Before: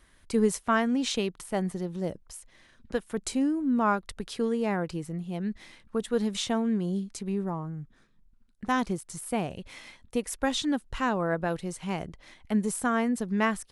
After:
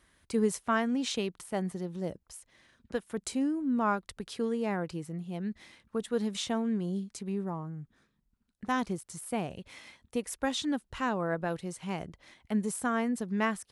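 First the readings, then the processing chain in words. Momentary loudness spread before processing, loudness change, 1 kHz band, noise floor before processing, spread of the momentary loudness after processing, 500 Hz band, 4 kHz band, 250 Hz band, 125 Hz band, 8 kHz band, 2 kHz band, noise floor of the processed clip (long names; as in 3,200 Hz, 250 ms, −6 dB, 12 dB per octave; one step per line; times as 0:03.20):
11 LU, −3.5 dB, −3.5 dB, −61 dBFS, 11 LU, −3.5 dB, −3.5 dB, −3.5 dB, −3.5 dB, −3.5 dB, −3.5 dB, −76 dBFS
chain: high-pass filter 53 Hz
level −3.5 dB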